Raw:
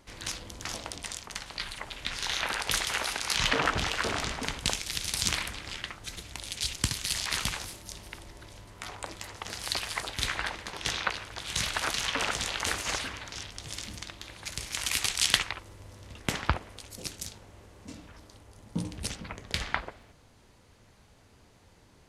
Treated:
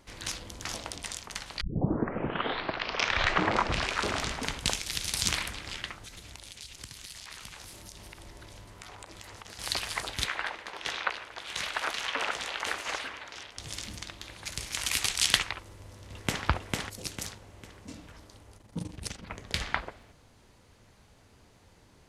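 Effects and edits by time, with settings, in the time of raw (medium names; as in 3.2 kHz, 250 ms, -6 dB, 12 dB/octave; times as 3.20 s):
1.61 s: tape start 2.66 s
6.03–9.59 s: compression 5:1, threshold -42 dBFS
10.24–13.58 s: tone controls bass -15 dB, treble -9 dB
15.67–16.44 s: echo throw 450 ms, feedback 35%, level -2 dB
18.57–19.30 s: AM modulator 24 Hz, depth 60%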